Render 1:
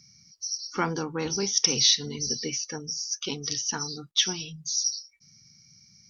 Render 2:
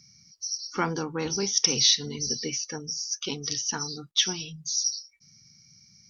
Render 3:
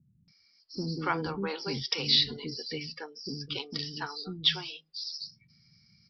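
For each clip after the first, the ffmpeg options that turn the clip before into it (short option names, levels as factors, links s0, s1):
-af anull
-filter_complex "[0:a]acrossover=split=380[s0][s1];[s1]adelay=280[s2];[s0][s2]amix=inputs=2:normalize=0,aresample=11025,aresample=44100,volume=0.891"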